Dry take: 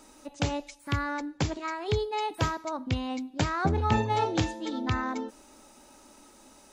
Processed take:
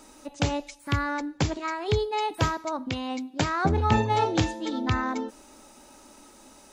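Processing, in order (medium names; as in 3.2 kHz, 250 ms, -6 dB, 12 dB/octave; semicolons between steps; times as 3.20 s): 2.89–3.69 s: high-pass 300 Hz -> 81 Hz 6 dB/octave; trim +3 dB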